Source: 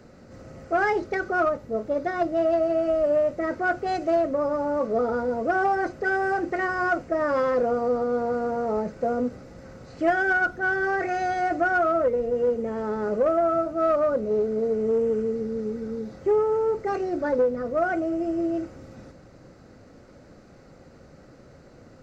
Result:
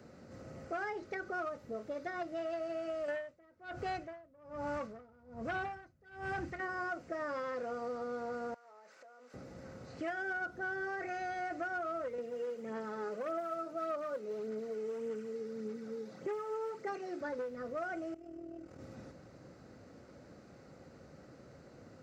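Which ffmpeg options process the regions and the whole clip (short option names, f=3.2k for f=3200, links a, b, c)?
-filter_complex "[0:a]asettb=1/sr,asplit=3[a][b][c];[a]atrim=end=3.084[d];[b]atrim=start=3.08:end=6.6,asetpts=PTS-STARTPTS,afade=t=in:d=0.004:c=qsin,afade=t=out:st=3.516:d=0.004:c=qsin,asubboost=boost=10.5:cutoff=140,aeval=exprs='0.2*sin(PI/2*1.58*val(0)/0.2)':c=same,aeval=exprs='val(0)*pow(10,-38*(0.5-0.5*cos(2*PI*1.2*n/s))/20)':c=same[e];[c]atrim=start=6.596[f];[d][e]acrossfade=d=0.004:c1=hsin:c2=qsin[g];[g][f]acrossfade=d=0.004:c1=qsin:c2=hsin,asettb=1/sr,asplit=3[h][i][j];[h]atrim=end=8.544[k];[i]atrim=start=8.54:end=9.34,asetpts=PTS-STARTPTS,afade=t=in:d=0.004:c=qsin,afade=t=out:st=0.796:d=0.004:c=qsin,highpass=1.2k,acompressor=threshold=-48dB:ratio=20:attack=3.2:release=140:knee=1:detection=peak[l];[j]atrim=start=9.336[m];[k][l]acrossfade=d=0.004:c1=hsin:c2=qsin[n];[n][m]acrossfade=d=0.004:c1=qsin:c2=hsin,asettb=1/sr,asplit=3[o][p][q];[o]atrim=end=12.184[r];[p]atrim=start=12.18:end=17.21,asetpts=PTS-STARTPTS,afade=t=in:d=0.004:c=qsin,afade=t=out:st=5.026:d=0.004:c=qsin,highpass=f=150:w=0.5412,highpass=f=150:w=1.3066,aphaser=in_gain=1:out_gain=1:delay=2.4:decay=0.4:speed=1.7:type=sinusoidal[s];[q]atrim=start=17.206[t];[r][s]acrossfade=d=0.004:c1=hsin:c2=qsin[u];[u][t]acrossfade=d=0.004:c1=qsin:c2=hsin,asettb=1/sr,asplit=3[v][w][x];[v]atrim=end=18.144[y];[w]atrim=start=18.14:end=18.8,asetpts=PTS-STARTPTS,afade=t=in:d=0.004:c=qsin,afade=t=out:st=0.656:d=0.004:c=qsin,acompressor=threshold=-39dB:ratio=4:attack=3.2:release=140:knee=1:detection=peak,tremolo=f=40:d=0.667,aeval=exprs='val(0)+0.00126*(sin(2*PI*60*n/s)+sin(2*PI*2*60*n/s)/2+sin(2*PI*3*60*n/s)/3+sin(2*PI*4*60*n/s)/4+sin(2*PI*5*60*n/s)/5)':c=same[z];[x]atrim=start=18.796[aa];[y][z]acrossfade=d=0.004:c1=hsin:c2=qsin[ab];[ab][aa]acrossfade=d=0.004:c1=qsin:c2=hsin,highpass=72,acrossover=split=1300|2900[ac][ad][ae];[ac]acompressor=threshold=-35dB:ratio=4[af];[ad]acompressor=threshold=-39dB:ratio=4[ag];[ae]acompressor=threshold=-55dB:ratio=4[ah];[af][ag][ah]amix=inputs=3:normalize=0,volume=-5.5dB"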